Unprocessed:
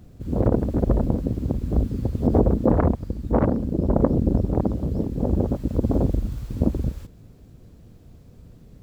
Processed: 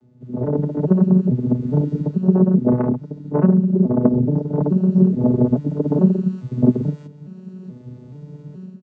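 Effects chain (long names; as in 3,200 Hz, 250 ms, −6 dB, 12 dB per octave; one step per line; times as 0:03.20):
vocoder with an arpeggio as carrier minor triad, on B2, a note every 427 ms
comb filter 4.7 ms, depth 63%
automatic gain control gain up to 15.5 dB
level −1.5 dB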